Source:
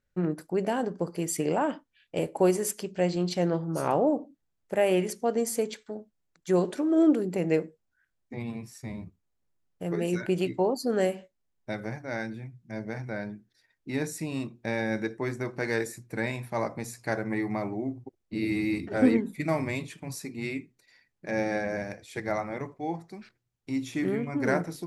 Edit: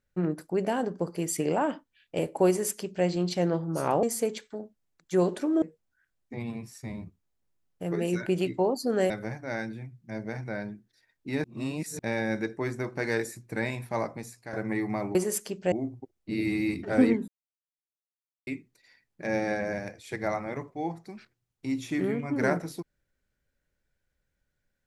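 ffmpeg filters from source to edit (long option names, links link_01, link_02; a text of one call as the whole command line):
ffmpeg -i in.wav -filter_complex "[0:a]asplit=11[link_01][link_02][link_03][link_04][link_05][link_06][link_07][link_08][link_09][link_10][link_11];[link_01]atrim=end=4.032[link_12];[link_02]atrim=start=5.388:end=6.982[link_13];[link_03]atrim=start=7.618:end=11.102[link_14];[link_04]atrim=start=11.708:end=14.052[link_15];[link_05]atrim=start=14.048:end=14.602,asetpts=PTS-STARTPTS,areverse[link_16];[link_06]atrim=start=14.598:end=17.14,asetpts=PTS-STARTPTS,afade=type=out:start_time=1.972:duration=0.57:silence=0.237137[link_17];[link_07]atrim=start=17.14:end=17.762,asetpts=PTS-STARTPTS,afade=type=in:duration=0.004:curve=hsin:silence=0.237137[link_18];[link_08]atrim=start=2.478:end=3.052[link_19];[link_09]atrim=start=17.758:end=19.32,asetpts=PTS-STARTPTS,afade=type=out:start_time=1.558:duration=0.004:curve=hsin[link_20];[link_10]atrim=start=19.32:end=20.51,asetpts=PTS-STARTPTS,volume=0[link_21];[link_11]atrim=start=20.51,asetpts=PTS-STARTPTS,afade=type=in:duration=0.004:curve=hsin[link_22];[link_12][link_13]acrossfade=duration=0.004:curve1=hsin:curve2=hsin[link_23];[link_23][link_14]acrossfade=duration=0.004:curve1=hsin:curve2=hsin[link_24];[link_24][link_15]acrossfade=duration=0.004:curve1=hsin:curve2=hsin[link_25];[link_25][link_16]acrossfade=duration=0.004:curve1=hsin:curve2=hsin[link_26];[link_17][link_18]concat=n=2:v=0:a=1[link_27];[link_26][link_27]acrossfade=duration=0.004:curve1=hsin:curve2=hsin[link_28];[link_28][link_19]acrossfade=duration=0.004:curve1=hsin:curve2=hsin[link_29];[link_20][link_21][link_22]concat=n=3:v=0:a=1[link_30];[link_29][link_30]acrossfade=duration=0.004:curve1=hsin:curve2=hsin" out.wav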